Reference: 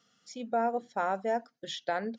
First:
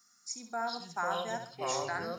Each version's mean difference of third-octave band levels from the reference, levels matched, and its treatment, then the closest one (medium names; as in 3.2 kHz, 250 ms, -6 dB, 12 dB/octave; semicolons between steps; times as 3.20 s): 11.0 dB: tone controls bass -13 dB, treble +15 dB; static phaser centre 1.3 kHz, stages 4; flutter echo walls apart 11.5 m, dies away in 0.45 s; ever faster or slower copies 318 ms, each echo -5 st, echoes 3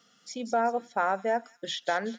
2.5 dB: high-pass 150 Hz; dynamic bell 1.5 kHz, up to +5 dB, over -43 dBFS, Q 0.83; in parallel at +2 dB: compression, threshold -39 dBFS, peak gain reduction 15.5 dB; on the sum: feedback echo behind a high-pass 189 ms, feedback 41%, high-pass 5.2 kHz, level -4 dB; trim -1 dB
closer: second